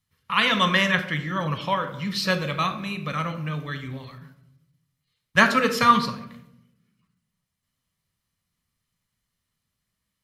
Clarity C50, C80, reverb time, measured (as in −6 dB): 11.0 dB, 13.5 dB, 0.85 s